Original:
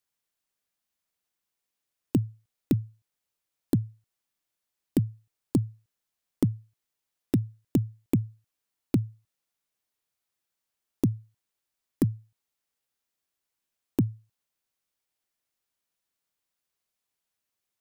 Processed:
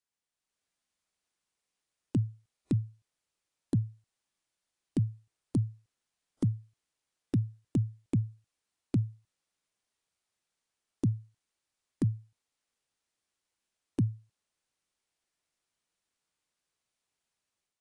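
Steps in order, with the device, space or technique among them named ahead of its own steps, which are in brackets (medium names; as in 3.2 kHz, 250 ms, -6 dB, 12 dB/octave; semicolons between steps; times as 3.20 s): low-bitrate web radio (level rider gain up to 6.5 dB; peak limiter -14.5 dBFS, peak gain reduction 9 dB; trim -5.5 dB; AAC 48 kbps 22.05 kHz)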